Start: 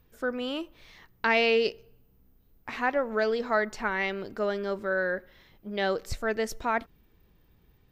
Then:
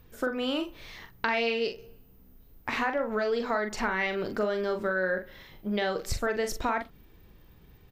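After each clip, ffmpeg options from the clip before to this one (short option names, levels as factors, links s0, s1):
-filter_complex "[0:a]asplit=2[s0][s1];[s1]alimiter=limit=0.0841:level=0:latency=1:release=214,volume=1.12[s2];[s0][s2]amix=inputs=2:normalize=0,acompressor=threshold=0.0501:ratio=4,asplit=2[s3][s4];[s4]adelay=43,volume=0.447[s5];[s3][s5]amix=inputs=2:normalize=0"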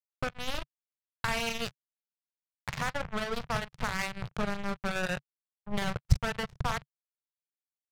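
-af "acrusher=bits=3:mix=0:aa=0.5,lowshelf=f=200:t=q:w=3:g=12,adynamicsmooth=sensitivity=7.5:basefreq=2800,volume=0.668"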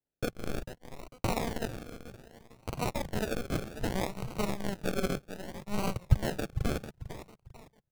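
-filter_complex "[0:a]aecho=1:1:448|896|1344:0.282|0.0902|0.0289,acrossover=split=160[s0][s1];[s1]acrusher=samples=36:mix=1:aa=0.000001:lfo=1:lforange=21.6:lforate=0.64[s2];[s0][s2]amix=inputs=2:normalize=0"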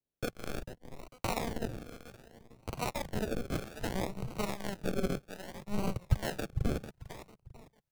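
-filter_complex "[0:a]acrossover=split=580[s0][s1];[s0]aeval=exprs='val(0)*(1-0.5/2+0.5/2*cos(2*PI*1.2*n/s))':c=same[s2];[s1]aeval=exprs='val(0)*(1-0.5/2-0.5/2*cos(2*PI*1.2*n/s))':c=same[s3];[s2][s3]amix=inputs=2:normalize=0"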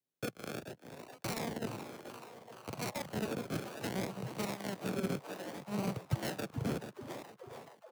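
-filter_complex "[0:a]highpass=f=110:w=0.5412,highpass=f=110:w=1.3066,asplit=8[s0][s1][s2][s3][s4][s5][s6][s7];[s1]adelay=427,afreqshift=130,volume=0.224[s8];[s2]adelay=854,afreqshift=260,volume=0.143[s9];[s3]adelay=1281,afreqshift=390,volume=0.0912[s10];[s4]adelay=1708,afreqshift=520,volume=0.0589[s11];[s5]adelay=2135,afreqshift=650,volume=0.0376[s12];[s6]adelay=2562,afreqshift=780,volume=0.024[s13];[s7]adelay=2989,afreqshift=910,volume=0.0153[s14];[s0][s8][s9][s10][s11][s12][s13][s14]amix=inputs=8:normalize=0,acrossover=split=330|4000[s15][s16][s17];[s16]aeval=exprs='0.0224*(abs(mod(val(0)/0.0224+3,4)-2)-1)':c=same[s18];[s15][s18][s17]amix=inputs=3:normalize=0,volume=0.891"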